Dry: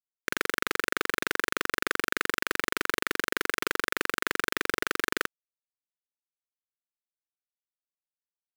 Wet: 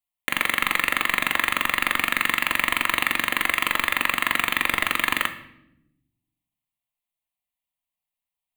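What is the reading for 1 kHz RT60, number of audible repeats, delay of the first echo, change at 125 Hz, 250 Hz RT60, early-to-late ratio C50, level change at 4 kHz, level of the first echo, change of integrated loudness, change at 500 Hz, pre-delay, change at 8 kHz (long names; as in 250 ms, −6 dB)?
0.70 s, no echo audible, no echo audible, +7.0 dB, 1.5 s, 12.5 dB, +8.0 dB, no echo audible, +7.5 dB, −3.0 dB, 3 ms, +3.5 dB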